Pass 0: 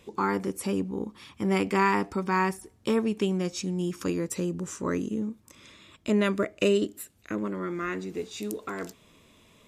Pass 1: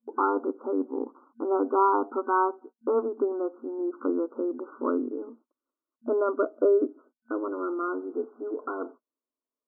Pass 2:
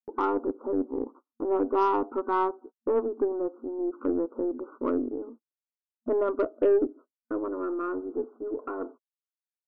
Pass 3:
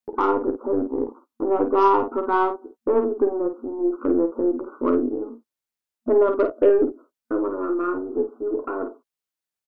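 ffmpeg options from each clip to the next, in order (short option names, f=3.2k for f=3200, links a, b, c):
-af "agate=range=-38dB:threshold=-46dB:ratio=16:detection=peak,afftfilt=real='re*between(b*sr/4096,230,1500)':imag='im*between(b*sr/4096,230,1500)':win_size=4096:overlap=0.75,volume=3dB"
-af "agate=range=-33dB:threshold=-46dB:ratio=16:detection=peak,lowpass=f=1k:p=1,aeval=exprs='0.224*(cos(1*acos(clip(val(0)/0.224,-1,1)))-cos(1*PI/2))+0.00562*(cos(5*acos(clip(val(0)/0.224,-1,1)))-cos(5*PI/2))+0.00708*(cos(6*acos(clip(val(0)/0.224,-1,1)))-cos(6*PI/2))+0.00158*(cos(7*acos(clip(val(0)/0.224,-1,1)))-cos(7*PI/2))':c=same"
-af "aecho=1:1:12|51:0.335|0.422,volume=5.5dB"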